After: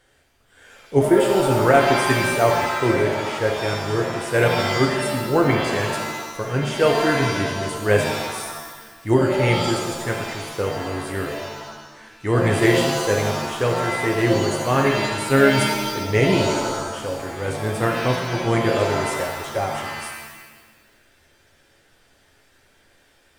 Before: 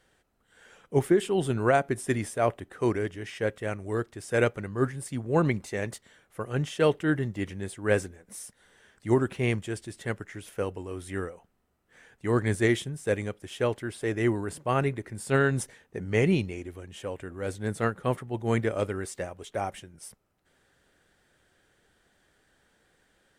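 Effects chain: bell 180 Hz -8 dB 0.34 oct; shimmer reverb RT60 1.2 s, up +7 st, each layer -2 dB, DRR 1.5 dB; gain +5 dB

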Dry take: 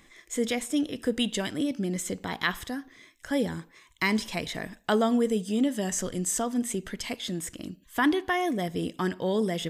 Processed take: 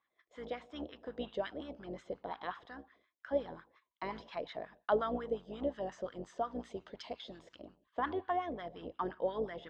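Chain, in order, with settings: octaver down 2 oct, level +3 dB; gate -49 dBFS, range -14 dB; resonant high shelf 2800 Hz +7 dB, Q 1.5, from 6.6 s +13.5 dB, from 7.61 s +6 dB; wah 5.6 Hz 540–1500 Hz, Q 3.3; air absorption 220 m; gain +1.5 dB

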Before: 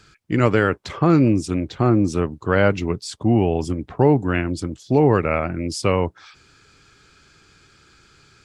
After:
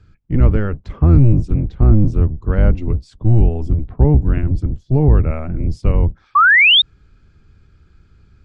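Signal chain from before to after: octaver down 1 oct, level +2 dB; RIAA curve playback; painted sound rise, 6.35–6.82, 1100–3800 Hz -1 dBFS; gain -8.5 dB

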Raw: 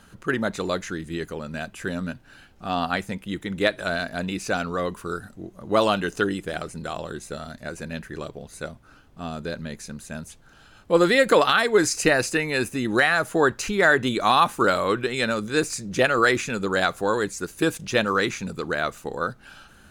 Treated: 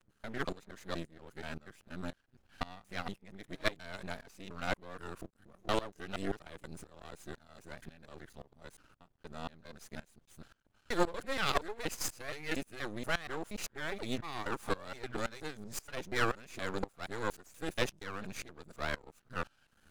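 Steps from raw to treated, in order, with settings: local time reversal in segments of 0.237 s; half-wave rectifier; dB-ramp tremolo swelling 1.9 Hz, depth 20 dB; gain -4.5 dB

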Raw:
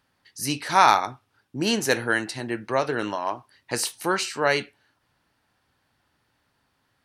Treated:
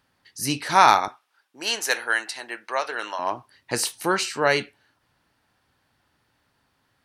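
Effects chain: 1.08–3.19 HPF 760 Hz 12 dB/oct; gain +1.5 dB

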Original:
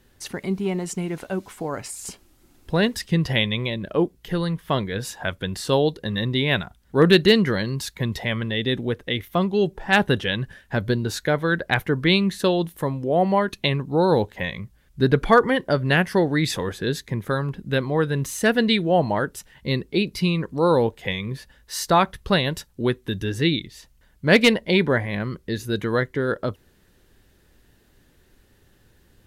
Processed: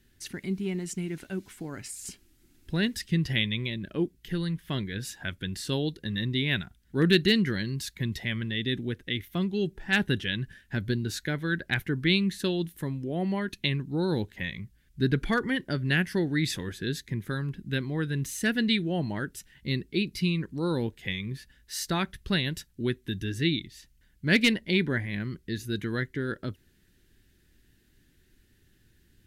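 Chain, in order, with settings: band shelf 750 Hz -11.5 dB; gain -5 dB

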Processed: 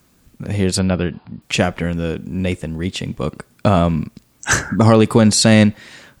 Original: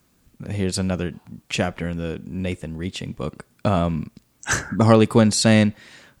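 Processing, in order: 0.79–1.42 brick-wall FIR low-pass 5100 Hz; maximiser +7 dB; gain -1 dB

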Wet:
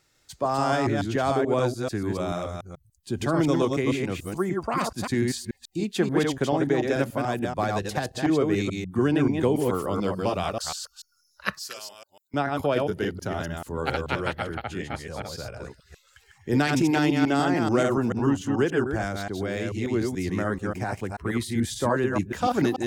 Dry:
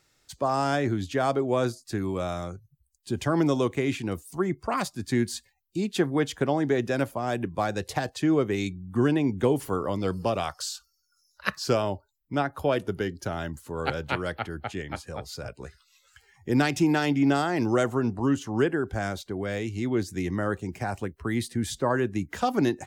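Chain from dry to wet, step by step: reverse delay 0.145 s, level -3 dB; 11.59–12.34 differentiator

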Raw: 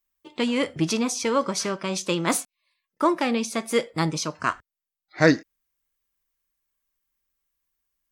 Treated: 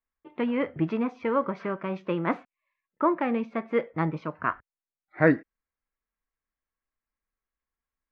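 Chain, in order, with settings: LPF 2100 Hz 24 dB/oct; gain -2.5 dB

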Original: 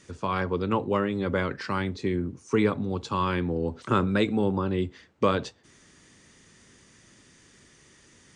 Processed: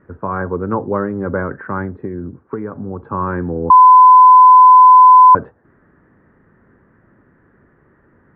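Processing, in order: elliptic low-pass 1600 Hz, stop band 80 dB; 1.85–3.05 compressor 10:1, threshold -28 dBFS, peak gain reduction 11 dB; 3.7–5.35 bleep 1010 Hz -9 dBFS; gain +7 dB

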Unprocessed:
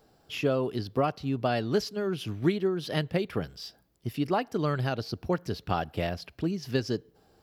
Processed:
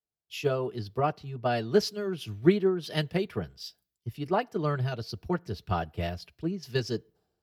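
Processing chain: notch comb 270 Hz; three-band expander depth 100%

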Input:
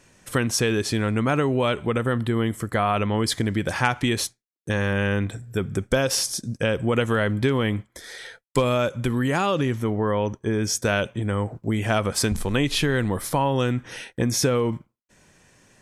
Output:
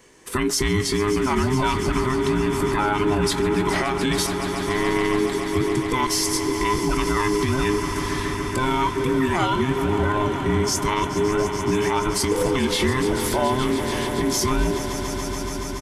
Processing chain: band inversion scrambler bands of 500 Hz; swelling echo 0.142 s, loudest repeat 5, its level -15 dB; limiter -15.5 dBFS, peak gain reduction 10.5 dB; doubler 22 ms -11 dB; gain +3 dB

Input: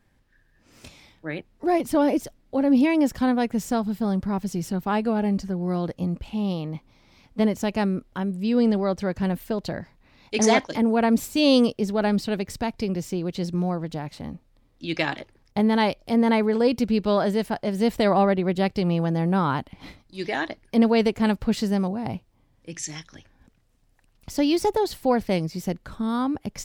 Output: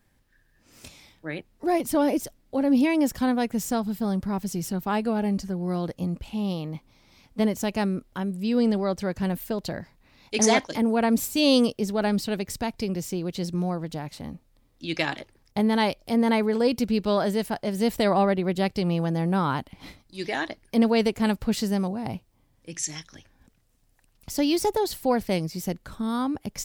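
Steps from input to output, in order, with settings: high shelf 6300 Hz +9.5 dB; gain -2 dB

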